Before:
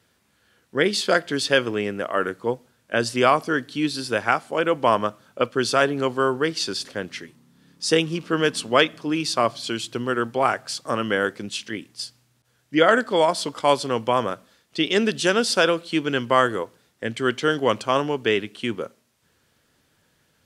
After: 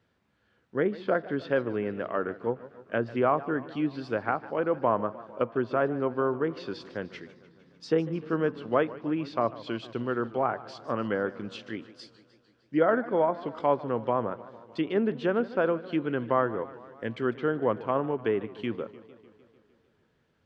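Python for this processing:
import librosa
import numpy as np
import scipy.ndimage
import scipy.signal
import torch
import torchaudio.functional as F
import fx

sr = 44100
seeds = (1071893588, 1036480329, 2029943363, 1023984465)

y = fx.env_lowpass_down(x, sr, base_hz=1400.0, full_db=-18.0)
y = fx.spacing_loss(y, sr, db_at_10k=24)
y = fx.echo_warbled(y, sr, ms=151, feedback_pct=66, rate_hz=2.8, cents=163, wet_db=-18)
y = F.gain(torch.from_numpy(y), -4.0).numpy()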